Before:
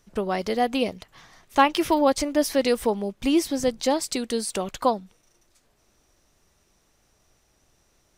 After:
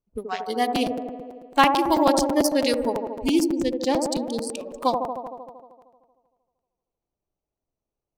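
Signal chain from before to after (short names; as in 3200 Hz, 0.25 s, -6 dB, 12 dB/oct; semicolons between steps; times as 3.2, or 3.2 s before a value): Wiener smoothing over 25 samples; spectral noise reduction 21 dB; band-limited delay 77 ms, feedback 73%, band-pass 500 Hz, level -3.5 dB; dynamic EQ 490 Hz, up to -4 dB, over -37 dBFS, Q 4.7; 3.44–4.71 LPF 3800 Hz 6 dB/oct; high shelf 2900 Hz +9.5 dB; crackling interface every 0.11 s, samples 256, repeat, from 0.75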